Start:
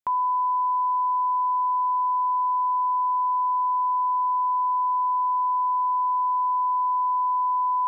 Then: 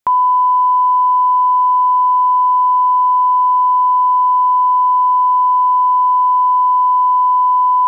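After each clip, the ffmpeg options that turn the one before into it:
-af "acontrast=37,volume=6dB"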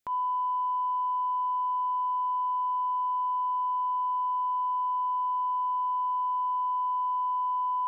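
-af "equalizer=f=960:t=o:w=0.62:g=-8.5,alimiter=limit=-22.5dB:level=0:latency=1:release=167,volume=-3dB"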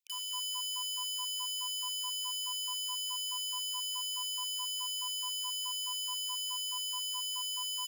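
-af "aeval=exprs='(mod(25.1*val(0)+1,2)-1)/25.1':c=same,aecho=1:1:212:0.316,afftfilt=real='re*gte(b*sr/1024,840*pow(2600/840,0.5+0.5*sin(2*PI*4.7*pts/sr)))':imag='im*gte(b*sr/1024,840*pow(2600/840,0.5+0.5*sin(2*PI*4.7*pts/sr)))':win_size=1024:overlap=0.75,volume=-7.5dB"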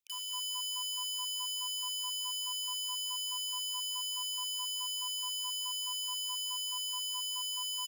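-af "aecho=1:1:164|328|492:0.0794|0.0326|0.0134,volume=-1dB"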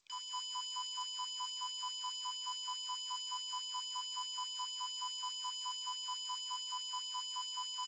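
-af "adynamicsmooth=sensitivity=2.5:basefreq=4.2k,asuperstop=centerf=2800:order=4:qfactor=4.5,volume=5dB" -ar 16000 -c:a g722

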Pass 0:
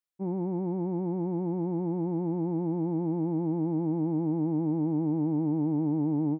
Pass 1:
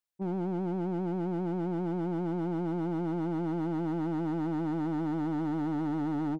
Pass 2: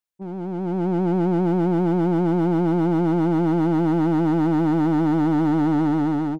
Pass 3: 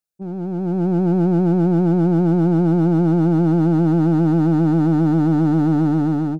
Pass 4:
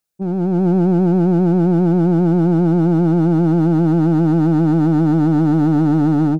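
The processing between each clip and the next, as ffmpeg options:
-af "asoftclip=type=hard:threshold=-29dB"
-af "dynaudnorm=f=290:g=5:m=12dB"
-af "equalizer=f=160:t=o:w=0.33:g=6,equalizer=f=1k:t=o:w=0.33:g=-10,equalizer=f=2k:t=o:w=0.33:g=-10,equalizer=f=3.15k:t=o:w=0.33:g=-7,volume=2dB"
-af "alimiter=limit=-17dB:level=0:latency=1:release=191,volume=7.5dB"

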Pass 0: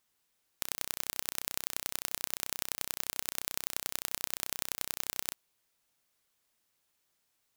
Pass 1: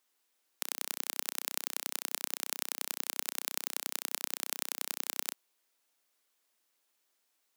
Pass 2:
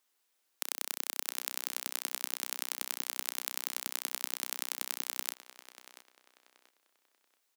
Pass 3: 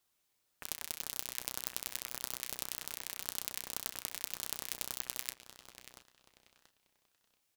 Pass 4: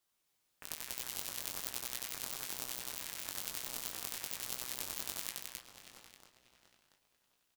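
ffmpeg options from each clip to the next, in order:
-af "highpass=f=250:w=0.5412,highpass=f=250:w=1.3066"
-filter_complex "[0:a]lowshelf=f=130:g=-11,asplit=2[a][b];[b]adelay=683,lowpass=f=4k:p=1,volume=-12dB,asplit=2[c][d];[d]adelay=683,lowpass=f=4k:p=1,volume=0.34,asplit=2[e][f];[f]adelay=683,lowpass=f=4k:p=1,volume=0.34[g];[a][c][e][g]amix=inputs=4:normalize=0"
-filter_complex "[0:a]flanger=delay=4:depth=5.1:regen=-51:speed=0.27:shape=triangular,asplit=2[a][b];[b]alimiter=limit=-18dB:level=0:latency=1:release=197,volume=-0.5dB[c];[a][c]amix=inputs=2:normalize=0,aeval=exprs='val(0)*sin(2*PI*1800*n/s+1800*0.3/1.8*sin(2*PI*1.8*n/s))':c=same"
-filter_complex "[0:a]flanger=delay=16.5:depth=5.3:speed=1.1,asplit=2[a][b];[b]aecho=0:1:87.46|262.4:0.562|0.794[c];[a][c]amix=inputs=2:normalize=0"

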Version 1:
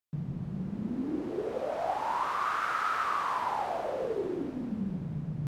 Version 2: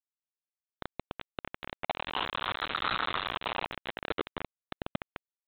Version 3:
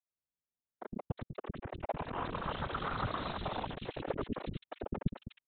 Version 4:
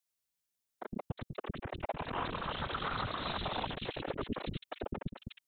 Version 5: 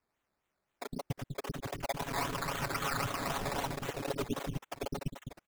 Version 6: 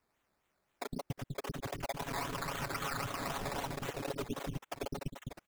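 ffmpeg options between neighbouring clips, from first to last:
-af "aecho=1:1:30|69|119.7|185.6|271.3:0.631|0.398|0.251|0.158|0.1,aresample=8000,acrusher=bits=3:mix=0:aa=0.000001,aresample=44100,volume=-4dB"
-filter_complex "[0:a]afftfilt=real='hypot(re,im)*cos(2*PI*random(0))':imag='hypot(re,im)*sin(2*PI*random(1))':win_size=512:overlap=0.75,tiltshelf=f=760:g=9.5,acrossover=split=350|2500[a][b][c];[a]adelay=110[d];[c]adelay=360[e];[d][b][e]amix=inputs=3:normalize=0,volume=4.5dB"
-af "highshelf=f=2.3k:g=9.5,alimiter=level_in=2dB:limit=-24dB:level=0:latency=1:release=207,volume=-2dB,volume=1dB"
-af "aecho=1:1:7.2:0.77,acrusher=samples=12:mix=1:aa=0.000001:lfo=1:lforange=7.2:lforate=3.8"
-af "acompressor=threshold=-42dB:ratio=2.5,volume=4dB"

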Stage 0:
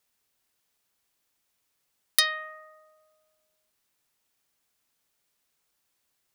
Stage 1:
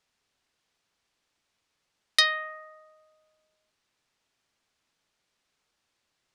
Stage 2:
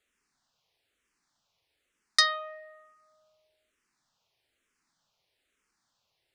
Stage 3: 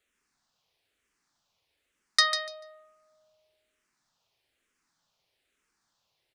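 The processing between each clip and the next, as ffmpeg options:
-af "lowpass=5.6k,volume=3dB"
-filter_complex "[0:a]asplit=2[a][b];[b]afreqshift=-1.1[c];[a][c]amix=inputs=2:normalize=1,volume=2.5dB"
-af "aecho=1:1:146|292|438:0.376|0.0677|0.0122"

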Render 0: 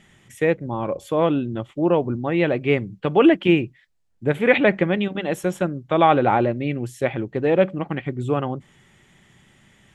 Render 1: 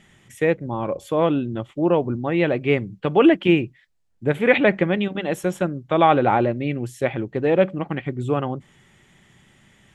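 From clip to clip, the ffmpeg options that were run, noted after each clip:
-af anull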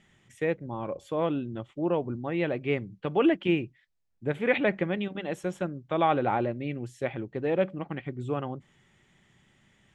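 -af "lowpass=8.4k,volume=-8.5dB"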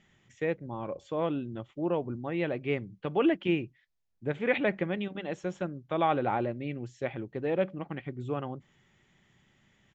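-af "aresample=16000,aresample=44100,volume=-2.5dB"

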